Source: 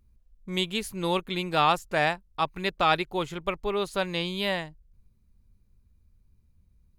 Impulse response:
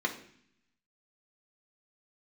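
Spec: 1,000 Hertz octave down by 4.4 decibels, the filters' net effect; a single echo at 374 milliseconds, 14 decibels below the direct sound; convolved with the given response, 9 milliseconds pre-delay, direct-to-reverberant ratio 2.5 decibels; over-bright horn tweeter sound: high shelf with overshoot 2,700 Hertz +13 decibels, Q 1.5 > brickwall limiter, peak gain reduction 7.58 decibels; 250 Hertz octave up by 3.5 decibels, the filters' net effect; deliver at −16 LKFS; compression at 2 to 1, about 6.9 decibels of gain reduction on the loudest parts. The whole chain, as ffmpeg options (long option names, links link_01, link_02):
-filter_complex "[0:a]equalizer=frequency=250:width_type=o:gain=6.5,equalizer=frequency=1000:width_type=o:gain=-4.5,acompressor=threshold=-32dB:ratio=2,aecho=1:1:374:0.2,asplit=2[link_01][link_02];[1:a]atrim=start_sample=2205,adelay=9[link_03];[link_02][link_03]afir=irnorm=-1:irlink=0,volume=-10dB[link_04];[link_01][link_04]amix=inputs=2:normalize=0,highshelf=frequency=2700:width_type=q:width=1.5:gain=13,volume=11.5dB,alimiter=limit=-3.5dB:level=0:latency=1"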